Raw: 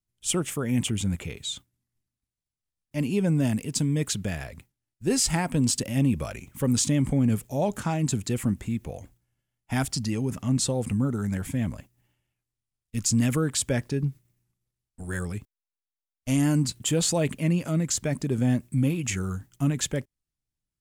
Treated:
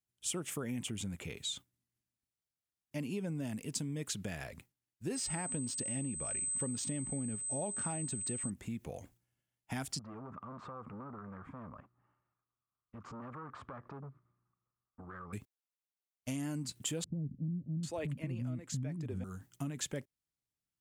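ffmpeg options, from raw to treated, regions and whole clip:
-filter_complex "[0:a]asettb=1/sr,asplit=3[a][b][c];[a]atrim=end=5.154[d];[b]atrim=start=5.15:end=8.5,asetpts=PTS-STARTPTS,afade=t=in:d=0.004:c=qsin,afade=t=out:st=3.346:d=0.004:c=qsin,highshelf=f=6.8k:g=-7,adynamicsmooth=sensitivity=7:basefreq=5.9k,aeval=exprs='val(0)+0.0447*sin(2*PI*8200*n/s)':c=same[e];[c]atrim=start=8.496[f];[d][e]acrossfade=d=0.004:c1=hsin:c2=qsin[g];[g][f]acrossfade=d=0.004:c1=qsin:c2=hsin,asettb=1/sr,asplit=3[h][i][j];[h]atrim=end=9.994[k];[i]atrim=start=9.99:end=15.33,asetpts=PTS-STARTPTS,afade=t=in:d=0.004:c=qsin,afade=t=out:st=5.336:d=0.004:c=qsin,asoftclip=type=hard:threshold=-27dB,lowpass=f=1.2k:t=q:w=8.2,acompressor=threshold=-40dB:ratio=5:attack=3.2:release=140:knee=1:detection=peak[l];[j]atrim=start=15.326[m];[k][l]acrossfade=d=0.004:c1=hsin:c2=qsin[n];[n][m]acrossfade=d=0.004:c1=qsin:c2=hsin,asettb=1/sr,asplit=3[o][p][q];[o]atrim=end=17.044[r];[p]atrim=start=17.04:end=19.24,asetpts=PTS-STARTPTS,afade=t=in:d=0.004:c=qsin,afade=t=out:st=2.196:d=0.004:c=qsin,bass=f=250:g=10,treble=f=4k:g=-8,acrossover=split=310[s][t];[t]adelay=790[u];[s][u]amix=inputs=2:normalize=0,atrim=end_sample=97020[v];[q]atrim=start=19.236[w];[r][v]acrossfade=d=0.004:c1=hsin:c2=qsin[x];[x][w]acrossfade=d=0.004:c1=qsin:c2=hsin,acompressor=threshold=-30dB:ratio=6,highpass=f=140:p=1,volume=-4dB"

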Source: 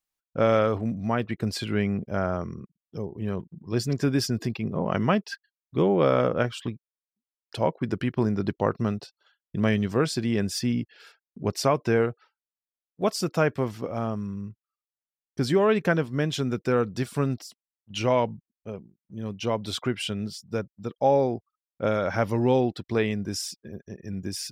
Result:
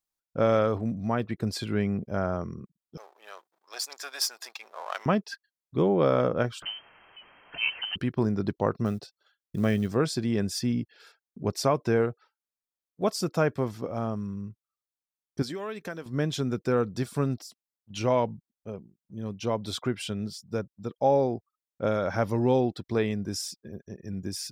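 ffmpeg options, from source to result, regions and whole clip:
-filter_complex "[0:a]asettb=1/sr,asplit=3[a][b][c];[a]atrim=end=2.974[d];[b]atrim=start=2.97:end=5.06,asetpts=PTS-STARTPTS,afade=t=in:d=0.004:c=qsin,afade=t=out:st=2.086:d=0.004:c=qsin,aeval=exprs='if(lt(val(0),0),0.447*val(0),val(0))':c=same,highpass=f=730:w=0.5412,highpass=f=730:w=1.3066,highshelf=f=2k:g=8.5[e];[c]atrim=start=5.056[f];[d][e]acrossfade=d=0.004:c1=hsin:c2=qsin[g];[g][f]acrossfade=d=0.004:c1=qsin:c2=hsin,asettb=1/sr,asplit=3[h][i][j];[h]atrim=end=6.624[k];[i]atrim=start=6.62:end=7.96,asetpts=PTS-STARTPTS,afade=t=in:d=0.004:c=qsin,afade=t=out:st=1.336:d=0.004:c=qsin,aeval=exprs='val(0)+0.5*0.0237*sgn(val(0))':c=same,lowpass=f=2.7k:t=q:w=0.5098,lowpass=f=2.7k:t=q:w=0.6013,lowpass=f=2.7k:t=q:w=0.9,lowpass=f=2.7k:t=q:w=2.563,afreqshift=-3200[l];[j]atrim=start=7.956[m];[k][l]acrossfade=d=0.004:c1=hsin:c2=qsin[n];[n][m]acrossfade=d=0.004:c1=qsin:c2=hsin,asettb=1/sr,asplit=3[o][p][q];[o]atrim=end=8.854[r];[p]atrim=start=8.85:end=9.95,asetpts=PTS-STARTPTS,afade=t=in:d=0.004:c=qsin,afade=t=out:st=1.096:d=0.004:c=qsin,equalizer=f=950:w=7.3:g=-10,acrusher=bits=8:mode=log:mix=0:aa=0.000001[s];[q]atrim=start=9.946[t];[r][s]acrossfade=d=0.004:c1=hsin:c2=qsin[u];[u][t]acrossfade=d=0.004:c1=qsin:c2=hsin,asettb=1/sr,asplit=3[v][w][x];[v]atrim=end=15.424[y];[w]atrim=start=15.42:end=16.06,asetpts=PTS-STARTPTS,afade=t=in:d=0.004:c=qsin,afade=t=out:st=0.636:d=0.004:c=qsin,equalizer=f=130:w=2.7:g=-12,acrossover=split=1400|5500[z][aa][ab];[z]acompressor=threshold=-35dB:ratio=4[ac];[aa]acompressor=threshold=-39dB:ratio=4[ad];[ab]acompressor=threshold=-45dB:ratio=4[ae];[ac][ad][ae]amix=inputs=3:normalize=0[af];[x]atrim=start=16.056[ag];[y][af]acrossfade=d=0.004:c1=hsin:c2=qsin[ah];[ah][ag]acrossfade=d=0.004:c1=qsin:c2=hsin,equalizer=f=2.2k:w=1.5:g=-4,bandreject=f=2.9k:w=14,volume=-1.5dB"

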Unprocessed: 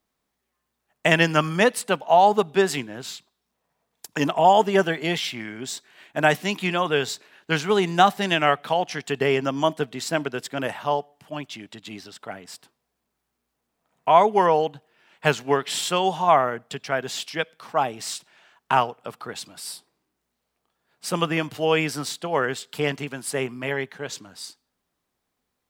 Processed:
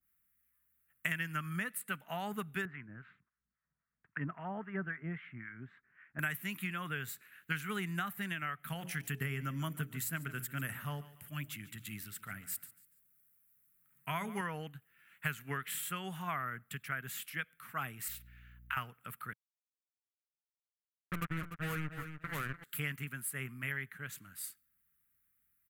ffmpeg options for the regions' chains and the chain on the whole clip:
-filter_complex "[0:a]asettb=1/sr,asplit=3[a][b][c];[a]atrim=end=2.654[d];[b]atrim=start=2.65:end=6.19,asetpts=PTS-STARTPTS,afade=t=in:d=0.004:c=qsin,afade=t=out:st=3.536:d=0.004:c=qsin,lowpass=f=1.8k:w=0.5412,lowpass=f=1.8k:w=1.3066,acrossover=split=850[e][f];[e]aeval=exprs='val(0)*(1-0.7/2+0.7/2*cos(2*PI*3.7*n/s))':c=same[g];[f]aeval=exprs='val(0)*(1-0.7/2-0.7/2*cos(2*PI*3.7*n/s))':c=same[h];[g][h]amix=inputs=2:normalize=0[i];[c]atrim=start=6.186[j];[d][i]acrossfade=d=0.004:c1=hsin:c2=qsin[k];[k][j]acrossfade=d=0.004:c1=qsin:c2=hsin,asettb=1/sr,asplit=3[l][m][n];[l]atrim=end=8.594[o];[m]atrim=start=8.59:end=14.41,asetpts=PTS-STARTPTS,afade=t=in:d=0.004:c=qsin,afade=t=out:st=5.816:d=0.004:c=qsin,bass=f=250:g=6,treble=f=4k:g=6,bandreject=f=60:t=h:w=6,bandreject=f=120:t=h:w=6,bandreject=f=180:t=h:w=6,bandreject=f=240:t=h:w=6,bandreject=f=300:t=h:w=6,bandreject=f=360:t=h:w=6,bandreject=f=420:t=h:w=6,bandreject=f=480:t=h:w=6,bandreject=f=540:t=h:w=6,bandreject=f=600:t=h:w=6,aecho=1:1:144|288|432:0.126|0.0453|0.0163,atrim=end_sample=256662[p];[n]atrim=start=14.406[q];[o][p]acrossfade=d=0.004:c1=hsin:c2=qsin[r];[r][q]acrossfade=d=0.004:c1=qsin:c2=hsin,asettb=1/sr,asplit=3[s][t][u];[s]atrim=end=18.084[v];[t]atrim=start=18.08:end=18.77,asetpts=PTS-STARTPTS,afade=t=in:d=0.004:c=qsin,afade=t=out:st=0.686:d=0.004:c=qsin,highpass=1.5k,equalizer=f=8.6k:w=1.2:g=-13.5,aeval=exprs='val(0)+0.00282*(sin(2*PI*60*n/s)+sin(2*PI*2*60*n/s)/2+sin(2*PI*3*60*n/s)/3+sin(2*PI*4*60*n/s)/4+sin(2*PI*5*60*n/s)/5)':c=same[w];[u]atrim=start=18.766[x];[v][w]acrossfade=d=0.004:c1=hsin:c2=qsin[y];[y][x]acrossfade=d=0.004:c1=qsin:c2=hsin,asettb=1/sr,asplit=3[z][aa][ab];[z]atrim=end=19.334[ac];[aa]atrim=start=19.33:end=22.64,asetpts=PTS-STARTPTS,afade=t=in:d=0.004:c=qsin,afade=t=out:st=3.306:d=0.004:c=qsin,lowpass=1k,acrusher=bits=3:mix=0:aa=0.5,aecho=1:1:295|590|885:0.299|0.0597|0.0119,atrim=end_sample=145971[ad];[ab]atrim=start=22.636[ae];[ac][ad]acrossfade=d=0.004:c1=hsin:c2=qsin[af];[af][ae]acrossfade=d=0.004:c1=qsin:c2=hsin,firequalizer=gain_entry='entry(120,0);entry(320,-15);entry(490,-21);entry(870,-21);entry(1300,-1);entry(2000,1);entry(3500,-10);entry(5200,-15);entry(7400,-3);entry(12000,14)':delay=0.05:min_phase=1,acompressor=threshold=-28dB:ratio=6,adynamicequalizer=threshold=0.00562:dfrequency=1600:dqfactor=0.7:tfrequency=1600:tqfactor=0.7:attack=5:release=100:ratio=0.375:range=3.5:mode=cutabove:tftype=highshelf,volume=-4dB"

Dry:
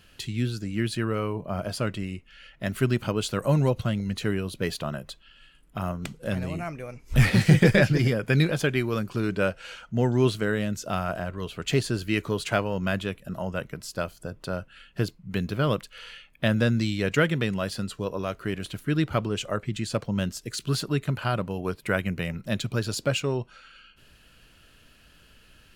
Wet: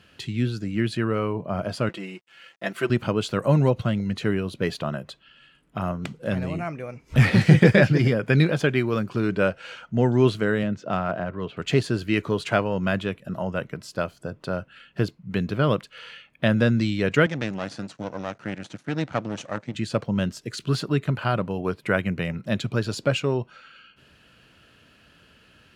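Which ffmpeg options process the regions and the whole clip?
-filter_complex "[0:a]asettb=1/sr,asplit=3[a][b][c];[a]atrim=end=1.894[d];[b]atrim=start=1.89:end=2.9,asetpts=PTS-STARTPTS,afade=t=in:d=0.004:c=qsin,afade=t=out:st=1.006:d=0.004:c=qsin,highpass=340,aecho=1:1:5.9:0.76,atrim=end_sample=44541,aeval=exprs='sgn(val(0))*max(abs(val(0))-0.0015,0)':c=same[e];[c]atrim=start=2.896[f];[d][e]acrossfade=d=0.004:c1=hsin:c2=qsin[g];[g][f]acrossfade=d=0.004:c1=qsin:c2=hsin,asettb=1/sr,asplit=3[h][i][j];[h]atrim=end=10.634[k];[i]atrim=start=10.63:end=11.57,asetpts=PTS-STARTPTS,afade=t=in:d=0.004:c=qsin,afade=t=out:st=0.936:d=0.004:c=qsin,highpass=91,aemphasis=mode=reproduction:type=cd,adynamicsmooth=sensitivity=7:basefreq=4k[l];[j]atrim=start=11.566[m];[k][l]acrossfade=d=0.004:c1=hsin:c2=qsin[n];[n][m]acrossfade=d=0.004:c1=qsin:c2=hsin,asettb=1/sr,asplit=3[o][p][q];[o]atrim=end=17.264[r];[p]atrim=start=17.26:end=19.75,asetpts=PTS-STARTPTS,afade=t=in:d=0.004:c=qsin,afade=t=out:st=2.486:d=0.004:c=qsin,aeval=exprs='max(val(0),0)':c=same,highpass=120,equalizer=f=400:t=q:w=4:g=-8,equalizer=f=1.1k:t=q:w=4:g=-4,equalizer=f=3k:t=q:w=4:g=-4,equalizer=f=6.2k:t=q:w=4:g=6,lowpass=f=9.1k:w=0.5412,lowpass=f=9.1k:w=1.3066[s];[q]atrim=start=19.746[t];[r][s]acrossfade=d=0.004:c1=hsin:c2=qsin[u];[u][t]acrossfade=d=0.004:c1=qsin:c2=hsin,highpass=94,aemphasis=mode=reproduction:type=50kf,volume=3.5dB"

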